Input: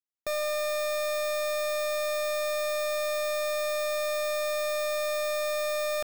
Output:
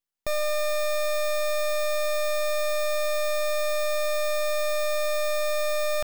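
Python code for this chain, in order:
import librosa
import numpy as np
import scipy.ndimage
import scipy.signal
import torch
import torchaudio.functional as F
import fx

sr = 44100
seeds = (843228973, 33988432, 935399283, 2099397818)

y = np.maximum(x, 0.0)
y = F.gain(torch.from_numpy(y), 8.5).numpy()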